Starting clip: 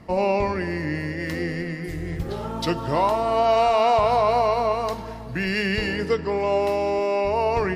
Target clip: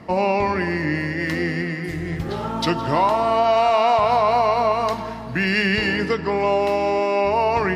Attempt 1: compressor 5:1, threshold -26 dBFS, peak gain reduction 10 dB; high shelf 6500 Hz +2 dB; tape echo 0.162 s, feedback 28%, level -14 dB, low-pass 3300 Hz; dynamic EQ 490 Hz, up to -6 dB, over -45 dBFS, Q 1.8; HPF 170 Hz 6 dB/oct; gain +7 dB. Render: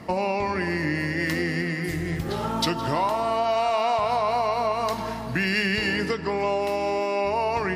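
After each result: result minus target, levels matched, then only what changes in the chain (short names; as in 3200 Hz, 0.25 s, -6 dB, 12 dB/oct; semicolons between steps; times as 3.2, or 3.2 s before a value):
8000 Hz band +7.0 dB; compressor: peak gain reduction +6.5 dB
change: high shelf 6500 Hz -9 dB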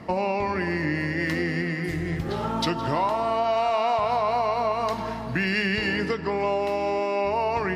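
compressor: peak gain reduction +6.5 dB
change: compressor 5:1, threshold -18 dBFS, peak gain reduction 4 dB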